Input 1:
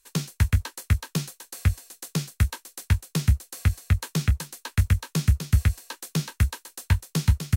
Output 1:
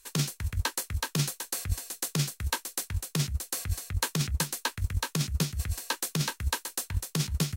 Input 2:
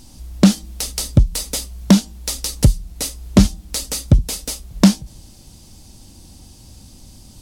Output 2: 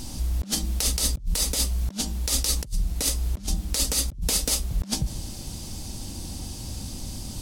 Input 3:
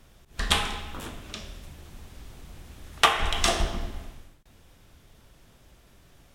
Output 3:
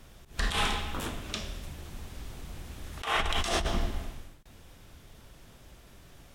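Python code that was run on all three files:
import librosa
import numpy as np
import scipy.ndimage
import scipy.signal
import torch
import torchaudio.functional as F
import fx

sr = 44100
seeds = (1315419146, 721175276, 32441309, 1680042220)

y = fx.over_compress(x, sr, threshold_db=-28.0, ratio=-1.0)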